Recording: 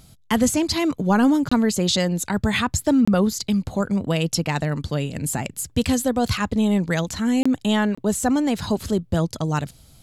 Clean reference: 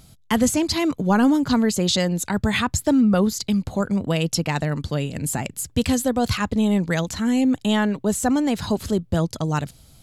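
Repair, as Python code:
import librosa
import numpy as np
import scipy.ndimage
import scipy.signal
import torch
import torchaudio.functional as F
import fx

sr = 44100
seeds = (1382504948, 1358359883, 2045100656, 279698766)

y = fx.fix_interpolate(x, sr, at_s=(1.49, 3.05, 7.43, 7.95), length_ms=25.0)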